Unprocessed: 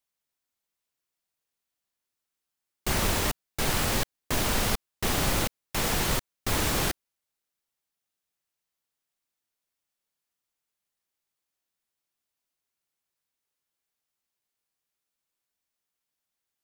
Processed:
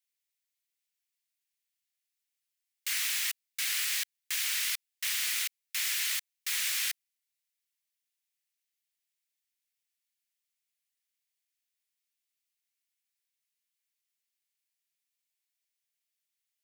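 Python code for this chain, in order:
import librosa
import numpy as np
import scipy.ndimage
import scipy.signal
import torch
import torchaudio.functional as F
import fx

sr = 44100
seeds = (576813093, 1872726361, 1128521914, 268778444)

y = scipy.signal.sosfilt(scipy.signal.cheby1(3, 1.0, 2000.0, 'highpass', fs=sr, output='sos'), x)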